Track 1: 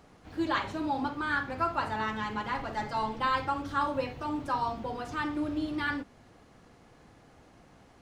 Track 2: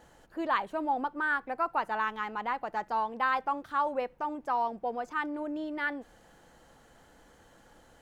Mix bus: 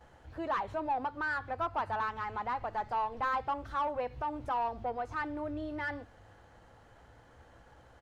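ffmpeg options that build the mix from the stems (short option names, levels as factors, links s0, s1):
-filter_complex "[0:a]lowshelf=f=140:t=q:w=1.5:g=11,flanger=delay=15.5:depth=3.9:speed=0.26,volume=0.422[s0];[1:a]aeval=exprs='if(lt(val(0),0),0.708*val(0),val(0))':c=same,asplit=2[s1][s2];[s2]highpass=f=720:p=1,volume=6.31,asoftclip=type=tanh:threshold=0.158[s3];[s1][s3]amix=inputs=2:normalize=0,lowpass=f=1200:p=1,volume=0.501,adelay=7.5,volume=0.531,asplit=2[s4][s5];[s5]apad=whole_len=353410[s6];[s0][s6]sidechaincompress=threshold=0.00891:ratio=8:attack=7.8:release=150[s7];[s7][s4]amix=inputs=2:normalize=0"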